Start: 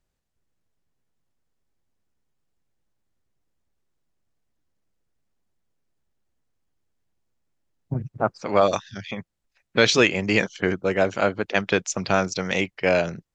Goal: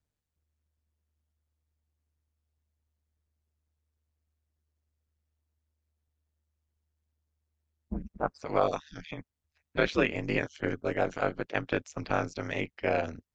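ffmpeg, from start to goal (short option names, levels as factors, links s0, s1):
-filter_complex "[0:a]aeval=exprs='val(0)*sin(2*PI*76*n/s)':c=same,acrossover=split=2800[s0][s1];[s1]acompressor=threshold=0.00794:ratio=4:attack=1:release=60[s2];[s0][s2]amix=inputs=2:normalize=0,volume=0.562"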